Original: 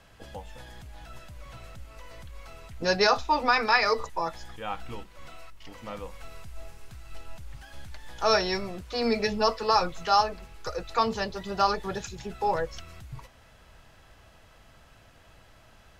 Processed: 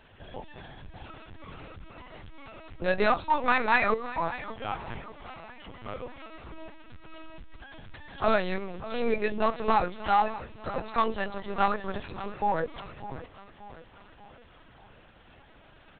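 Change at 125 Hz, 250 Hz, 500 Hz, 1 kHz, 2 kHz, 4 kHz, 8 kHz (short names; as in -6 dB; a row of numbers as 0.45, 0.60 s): -1.0 dB, 0.0 dB, -1.5 dB, -1.0 dB, -1.0 dB, -10.5 dB, under -35 dB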